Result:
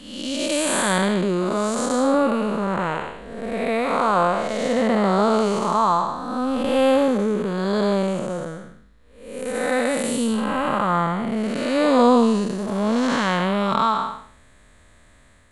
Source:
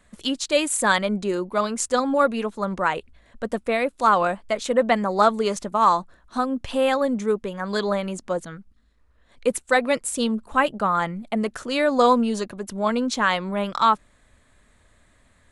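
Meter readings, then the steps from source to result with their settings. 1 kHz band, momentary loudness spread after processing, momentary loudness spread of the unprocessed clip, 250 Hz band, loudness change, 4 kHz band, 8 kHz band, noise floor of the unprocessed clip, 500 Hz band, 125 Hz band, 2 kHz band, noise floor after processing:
0.0 dB, 9 LU, 8 LU, +5.0 dB, +2.0 dB, +0.5 dB, +0.5 dB, -60 dBFS, +2.0 dB, +6.5 dB, -1.5 dB, -52 dBFS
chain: spectral blur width 334 ms; trim +7.5 dB

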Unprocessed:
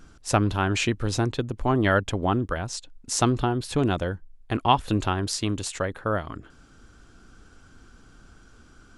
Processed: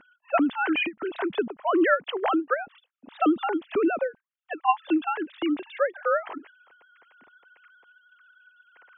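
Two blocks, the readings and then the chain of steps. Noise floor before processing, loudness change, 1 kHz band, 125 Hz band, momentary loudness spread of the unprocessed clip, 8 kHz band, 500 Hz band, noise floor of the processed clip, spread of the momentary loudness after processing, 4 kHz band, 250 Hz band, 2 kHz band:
-53 dBFS, -0.5 dB, 0.0 dB, under -30 dB, 9 LU, under -40 dB, +1.5 dB, -81 dBFS, 7 LU, -7.0 dB, +0.5 dB, +1.5 dB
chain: formants replaced by sine waves; endings held to a fixed fall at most 390 dB/s

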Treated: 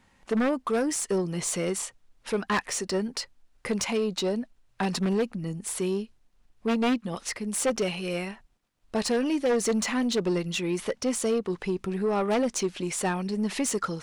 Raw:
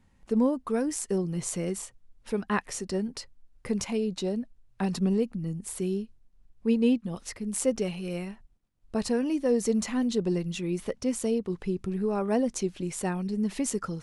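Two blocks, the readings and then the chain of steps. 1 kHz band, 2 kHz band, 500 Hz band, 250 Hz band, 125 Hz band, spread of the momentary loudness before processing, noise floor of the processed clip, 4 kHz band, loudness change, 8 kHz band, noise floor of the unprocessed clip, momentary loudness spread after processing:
+5.5 dB, +7.0 dB, +2.0 dB, -0.5 dB, -1.0 dB, 9 LU, -65 dBFS, +7.0 dB, +1.5 dB, +4.5 dB, -62 dBFS, 8 LU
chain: wavefolder -18.5 dBFS; overdrive pedal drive 14 dB, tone 6.7 kHz, clips at -18.5 dBFS; trim +1 dB

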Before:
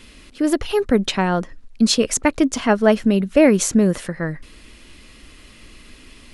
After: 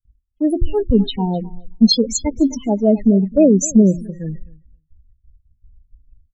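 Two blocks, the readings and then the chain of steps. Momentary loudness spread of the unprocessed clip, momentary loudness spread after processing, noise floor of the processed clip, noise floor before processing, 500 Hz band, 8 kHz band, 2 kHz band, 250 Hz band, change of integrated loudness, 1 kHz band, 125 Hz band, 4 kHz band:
12 LU, 15 LU, -67 dBFS, -46 dBFS, 0.0 dB, -0.5 dB, under -20 dB, +3.5 dB, +2.0 dB, -6.5 dB, +4.0 dB, +2.5 dB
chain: gate with hold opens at -33 dBFS; tone controls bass +6 dB, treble +6 dB; de-hum 86.55 Hz, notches 4; in parallel at +1 dB: peak limiter -9.5 dBFS, peak gain reduction 8.5 dB; on the sum: loudest bins only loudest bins 8; on a send: feedback delay 261 ms, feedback 22%, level -17 dB; on the sum: three bands expanded up and down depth 100%; trim -6 dB

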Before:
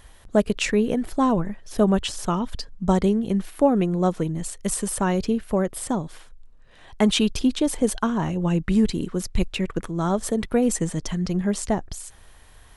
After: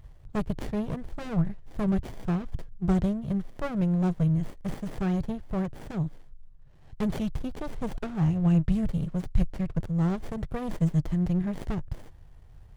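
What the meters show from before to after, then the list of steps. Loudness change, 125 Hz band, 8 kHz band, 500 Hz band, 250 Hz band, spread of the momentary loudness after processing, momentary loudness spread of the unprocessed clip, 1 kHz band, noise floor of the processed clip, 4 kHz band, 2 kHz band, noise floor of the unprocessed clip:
-5.5 dB, +0.5 dB, under -20 dB, -12.0 dB, -5.5 dB, 10 LU, 7 LU, -11.5 dB, -50 dBFS, -19.0 dB, -11.0 dB, -49 dBFS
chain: resonant low shelf 190 Hz +8.5 dB, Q 3; sliding maximum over 33 samples; trim -7.5 dB

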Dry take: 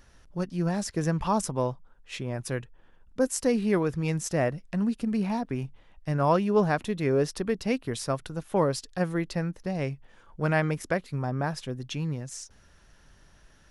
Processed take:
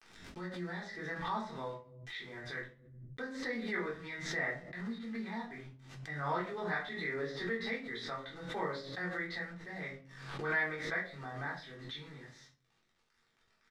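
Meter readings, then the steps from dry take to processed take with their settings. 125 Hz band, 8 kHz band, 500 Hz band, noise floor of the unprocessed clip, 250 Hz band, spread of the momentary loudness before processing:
-16.5 dB, -19.5 dB, -13.5 dB, -58 dBFS, -14.5 dB, 11 LU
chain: de-esser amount 60%; two resonant band-passes 2.7 kHz, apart 0.9 oct; tilt EQ -3 dB/octave; bit crusher 11-bit; distance through air 88 m; doubling 22 ms -4 dB; simulated room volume 250 m³, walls furnished, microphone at 3.7 m; swell ahead of each attack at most 55 dB/s

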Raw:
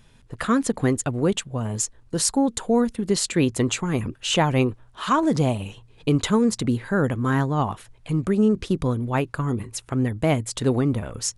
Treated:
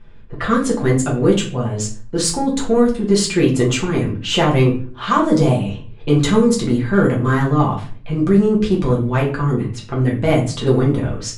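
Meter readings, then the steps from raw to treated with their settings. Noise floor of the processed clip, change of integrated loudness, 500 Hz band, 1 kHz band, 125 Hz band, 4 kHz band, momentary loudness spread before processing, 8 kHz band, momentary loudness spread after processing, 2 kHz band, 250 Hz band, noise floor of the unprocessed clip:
-35 dBFS, +6.0 dB, +7.5 dB, +5.0 dB, +7.0 dB, +5.0 dB, 7 LU, +1.5 dB, 8 LU, +5.5 dB, +5.5 dB, -54 dBFS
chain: level-controlled noise filter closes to 2.4 kHz, open at -15.5 dBFS; in parallel at -5 dB: saturation -19 dBFS, distortion -12 dB; on the sum: simulated room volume 33 m³, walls mixed, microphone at 0.82 m; trim -2.5 dB

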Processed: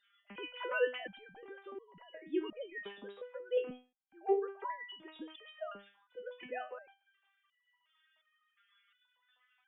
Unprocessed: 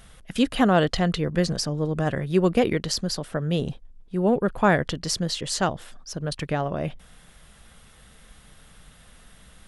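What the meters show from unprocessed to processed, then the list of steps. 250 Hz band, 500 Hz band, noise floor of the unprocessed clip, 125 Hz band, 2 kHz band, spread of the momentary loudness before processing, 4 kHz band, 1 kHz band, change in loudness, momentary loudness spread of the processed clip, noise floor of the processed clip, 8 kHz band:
-22.0 dB, -12.0 dB, -52 dBFS, under -40 dB, -12.5 dB, 12 LU, -19.5 dB, -16.0 dB, -15.5 dB, 19 LU, -80 dBFS, under -40 dB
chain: formants replaced by sine waves; resonator arpeggio 2.8 Hz 200–980 Hz; trim +1.5 dB

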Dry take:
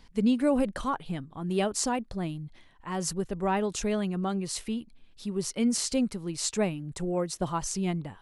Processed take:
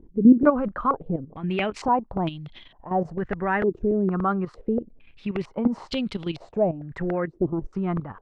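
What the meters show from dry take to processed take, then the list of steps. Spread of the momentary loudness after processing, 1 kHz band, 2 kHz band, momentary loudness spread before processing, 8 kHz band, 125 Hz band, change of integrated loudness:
10 LU, +7.0 dB, +6.0 dB, 10 LU, under -20 dB, +4.0 dB, +5.0 dB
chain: level held to a coarse grid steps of 11 dB; crackling interface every 0.29 s, samples 64, repeat, from 0.43 s; step-sequenced low-pass 2.2 Hz 360–3300 Hz; trim +7.5 dB

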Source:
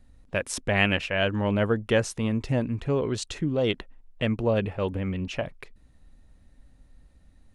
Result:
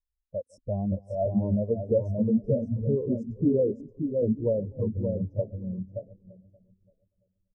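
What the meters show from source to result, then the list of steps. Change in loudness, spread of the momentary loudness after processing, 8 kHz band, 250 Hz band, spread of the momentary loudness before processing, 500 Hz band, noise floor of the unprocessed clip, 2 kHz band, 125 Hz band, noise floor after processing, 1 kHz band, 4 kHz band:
-1.5 dB, 11 LU, under -30 dB, +1.0 dB, 8 LU, 0.0 dB, -57 dBFS, under -40 dB, -0.5 dB, -82 dBFS, no reading, under -40 dB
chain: backward echo that repeats 456 ms, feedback 62%, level -11 dB; delay 505 ms -22.5 dB; FFT band-reject 1.1–4.8 kHz; on a send: feedback delay 576 ms, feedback 29%, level -3 dB; on the sum: compression 6:1, threshold -21 dBFS, peak gain reduction 5 dB; spectral contrast expander 2.5:1

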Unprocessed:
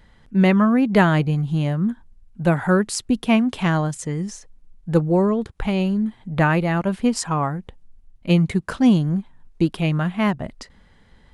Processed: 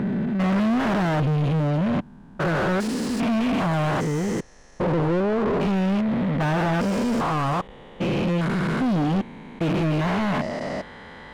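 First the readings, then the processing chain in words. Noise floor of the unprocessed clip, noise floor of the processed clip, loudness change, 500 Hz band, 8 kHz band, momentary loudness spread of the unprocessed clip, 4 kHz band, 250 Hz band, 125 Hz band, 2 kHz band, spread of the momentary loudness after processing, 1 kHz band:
-53 dBFS, -45 dBFS, -3.0 dB, -1.5 dB, -7.5 dB, 10 LU, -2.0 dB, -3.0 dB, -2.5 dB, -2.5 dB, 7 LU, -0.5 dB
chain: spectrogram pixelated in time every 400 ms; overdrive pedal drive 38 dB, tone 1.1 kHz, clips at -8 dBFS; trim -6.5 dB

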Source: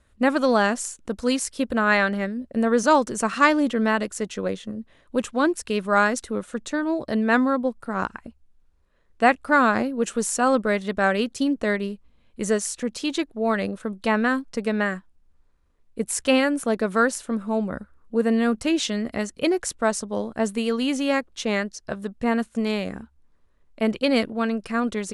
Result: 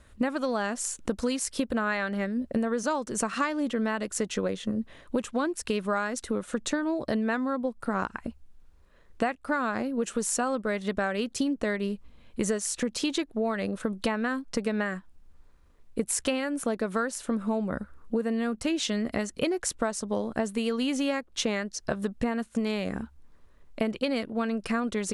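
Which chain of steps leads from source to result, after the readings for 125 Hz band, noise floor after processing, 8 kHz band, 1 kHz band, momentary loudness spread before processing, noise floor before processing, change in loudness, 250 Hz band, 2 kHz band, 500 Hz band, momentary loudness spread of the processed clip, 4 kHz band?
-3.5 dB, -56 dBFS, -2.0 dB, -9.0 dB, 10 LU, -62 dBFS, -6.0 dB, -5.0 dB, -8.5 dB, -6.0 dB, 4 LU, -4.5 dB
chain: compression 12:1, threshold -31 dBFS, peak gain reduction 20 dB; trim +6.5 dB

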